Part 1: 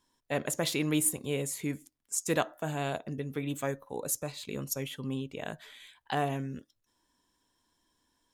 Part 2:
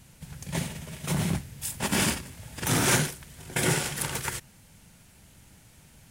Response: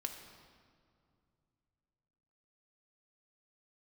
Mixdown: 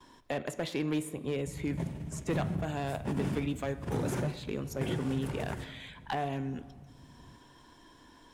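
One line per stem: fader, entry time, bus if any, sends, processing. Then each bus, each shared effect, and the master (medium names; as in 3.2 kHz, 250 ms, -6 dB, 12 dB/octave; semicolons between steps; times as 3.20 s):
-3.5 dB, 0.00 s, send -6 dB, treble shelf 5.4 kHz -8 dB; three bands compressed up and down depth 70%
-10.0 dB, 1.25 s, send -7.5 dB, tilt shelf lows +8.5 dB, about 930 Hz; compression, threshold -22 dBFS, peak gain reduction 7.5 dB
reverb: on, RT60 2.3 s, pre-delay 3 ms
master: treble shelf 5 kHz -8.5 dB; one-sided clip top -25.5 dBFS; gate with hold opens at -53 dBFS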